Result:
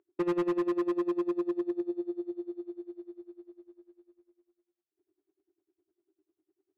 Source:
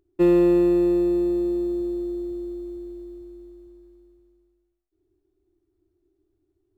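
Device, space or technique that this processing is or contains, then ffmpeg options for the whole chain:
helicopter radio: -af "highpass=300,lowpass=2500,aeval=exprs='val(0)*pow(10,-23*(0.5-0.5*cos(2*PI*10*n/s))/20)':channel_layout=same,asoftclip=type=hard:threshold=-25.5dB,volume=1dB"

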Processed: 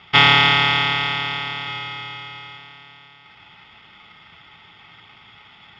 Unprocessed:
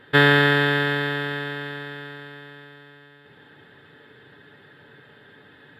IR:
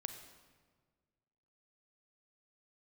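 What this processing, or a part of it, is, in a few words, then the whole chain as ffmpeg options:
ring modulator pedal into a guitar cabinet: -filter_complex "[0:a]asettb=1/sr,asplit=3[link_01][link_02][link_03];[link_01]atrim=end=1.674[link_04];[link_02]atrim=start=1.67:end=2.57,asetpts=PTS-STARTPTS,afade=type=in:duration=0.004:curve=qsin,afade=type=out:start_time=0.896:duration=0.004:curve=qsin,aecho=1:1:2.5:0.59,atrim=end_sample=39690[link_05];[link_03]atrim=start=2.566[link_06];[link_04][link_05]acrossfade=duration=0.004:curve1=hsin:curve2=qsin[link_07];[link_07][link_06]acrossfade=duration=0.004:curve1=qsin:curve2=hsin,aeval=exprs='val(0)*sgn(sin(2*PI*1700*n/s))':channel_layout=same,highpass=85,equalizer=frequency=140:width_type=q:width=4:gain=-6,equalizer=frequency=280:width_type=q:width=4:gain=-5,equalizer=frequency=460:width_type=q:width=4:gain=-6,equalizer=frequency=860:width_type=q:width=4:gain=7,equalizer=frequency=1600:width_type=q:width=4:gain=-8,equalizer=frequency=2700:width_type=q:width=4:gain=8,lowpass=frequency=3500:width=0.5412,lowpass=frequency=3500:width=1.3066,volume=4.5dB"

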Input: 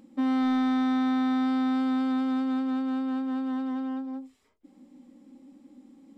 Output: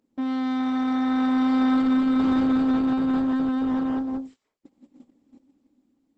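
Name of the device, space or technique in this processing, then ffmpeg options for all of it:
video call: -af "highpass=180,dynaudnorm=framelen=530:gausssize=5:maxgain=8dB,agate=range=-16dB:threshold=-43dB:ratio=16:detection=peak" -ar 48000 -c:a libopus -b:a 12k

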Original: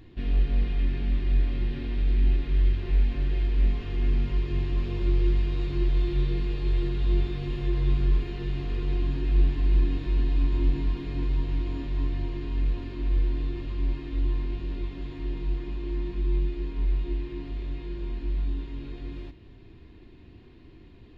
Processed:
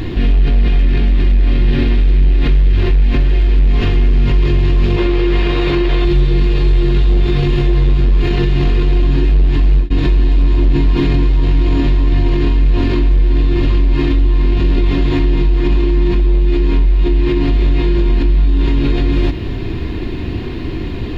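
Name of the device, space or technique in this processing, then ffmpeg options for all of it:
loud club master: -filter_complex "[0:a]asettb=1/sr,asplit=3[link_01][link_02][link_03];[link_01]atrim=end=4.964[link_04];[link_02]atrim=start=4.96:end=6.05,asetpts=PTS-STARTPTS,afade=type=in:duration=0.004:curve=qsin,afade=type=out:start_time=1.086:duration=0.004:curve=qsin,bass=frequency=250:gain=-13,treble=frequency=4000:gain=-8[link_05];[link_03]atrim=start=6.046[link_06];[link_04][link_05]acrossfade=duration=0.004:curve1=hsin:curve2=qsin[link_07];[link_07][link_06]acrossfade=duration=0.004:curve1=qsin:curve2=hsin,acompressor=threshold=-27dB:ratio=2,asoftclip=type=hard:threshold=-22.5dB,alimiter=level_in=34dB:limit=-1dB:release=50:level=0:latency=1,volume=-5dB"

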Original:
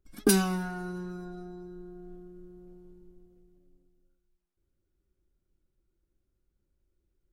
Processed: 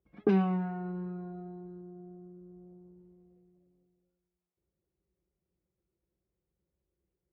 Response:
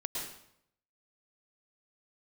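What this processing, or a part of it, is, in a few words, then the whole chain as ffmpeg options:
bass cabinet: -filter_complex "[0:a]highpass=frequency=61:width=0.5412,highpass=frequency=61:width=1.3066,equalizer=frequency=93:width_type=q:width=4:gain=-8,equalizer=frequency=180:width_type=q:width=4:gain=5,equalizer=frequency=260:width_type=q:width=4:gain=-9,equalizer=frequency=480:width_type=q:width=4:gain=5,equalizer=frequency=710:width_type=q:width=4:gain=3,equalizer=frequency=1500:width_type=q:width=4:gain=-9,lowpass=frequency=2300:width=0.5412,lowpass=frequency=2300:width=1.3066,asettb=1/sr,asplit=3[link_01][link_02][link_03];[link_01]atrim=end=1.814[link_04];[link_02]atrim=start=1.81:end=2.99,asetpts=PTS-STARTPTS,afade=type=in:duration=0.004:curve=qsin,afade=type=out:start_time=1.176:duration=0.004:curve=qsin,equalizer=frequency=4400:width_type=o:width=2:gain=-13.5[link_05];[link_03]atrim=start=2.986[link_06];[link_04][link_05]acrossfade=duration=0.004:curve1=hsin:curve2=qsin[link_07];[link_07][link_06]acrossfade=duration=0.004:curve1=qsin:curve2=hsin,volume=-2.5dB"

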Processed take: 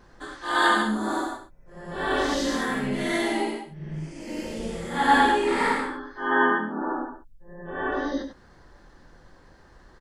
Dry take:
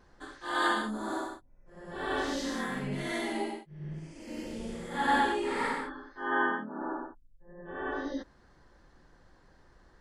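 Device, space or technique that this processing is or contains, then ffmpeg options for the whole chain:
slapback doubling: -filter_complex "[0:a]asplit=3[link_01][link_02][link_03];[link_02]adelay=24,volume=-7dB[link_04];[link_03]adelay=97,volume=-8.5dB[link_05];[link_01][link_04][link_05]amix=inputs=3:normalize=0,volume=6.5dB"

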